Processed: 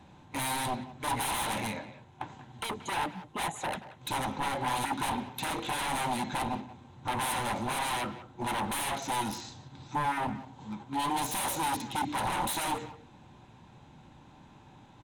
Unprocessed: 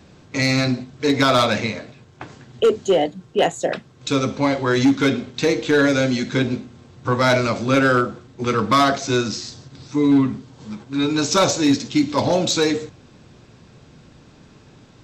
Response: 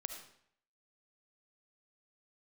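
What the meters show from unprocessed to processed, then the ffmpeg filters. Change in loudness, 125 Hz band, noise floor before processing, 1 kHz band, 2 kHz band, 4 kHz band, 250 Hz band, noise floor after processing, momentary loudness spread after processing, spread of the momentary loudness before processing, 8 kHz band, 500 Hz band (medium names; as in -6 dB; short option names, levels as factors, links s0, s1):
-13.5 dB, -15.5 dB, -49 dBFS, -6.5 dB, -12.5 dB, -12.0 dB, -18.5 dB, -55 dBFS, 11 LU, 11 LU, -7.5 dB, -21.0 dB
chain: -filter_complex "[0:a]aeval=exprs='0.0841*(abs(mod(val(0)/0.0841+3,4)-2)-1)':c=same,superequalizer=7b=0.562:9b=3.16:14b=0.355:15b=0.631:16b=2.51,asplit=2[s0][s1];[s1]adelay=180,highpass=300,lowpass=3400,asoftclip=type=hard:threshold=0.0794,volume=0.2[s2];[s0][s2]amix=inputs=2:normalize=0,volume=0.422"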